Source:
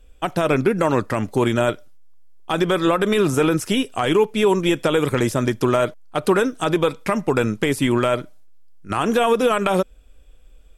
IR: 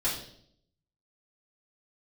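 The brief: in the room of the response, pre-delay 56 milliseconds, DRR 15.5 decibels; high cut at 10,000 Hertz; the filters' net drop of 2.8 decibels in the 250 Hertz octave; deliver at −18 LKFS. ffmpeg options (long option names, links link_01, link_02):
-filter_complex "[0:a]lowpass=10000,equalizer=frequency=250:width_type=o:gain=-4,asplit=2[link_01][link_02];[1:a]atrim=start_sample=2205,adelay=56[link_03];[link_02][link_03]afir=irnorm=-1:irlink=0,volume=-23dB[link_04];[link_01][link_04]amix=inputs=2:normalize=0,volume=3dB"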